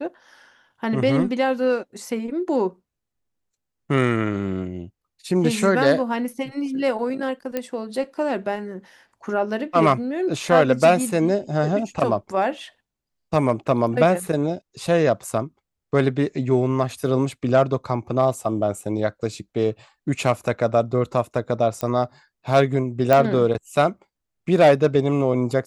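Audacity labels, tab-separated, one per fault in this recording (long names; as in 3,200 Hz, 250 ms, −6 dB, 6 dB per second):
7.570000	7.570000	click −12 dBFS
21.810000	21.810000	click −12 dBFS
23.130000	23.130000	click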